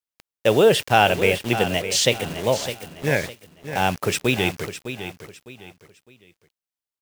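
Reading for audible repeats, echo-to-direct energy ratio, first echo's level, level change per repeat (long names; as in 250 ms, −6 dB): 3, −10.5 dB, −11.0 dB, −10.0 dB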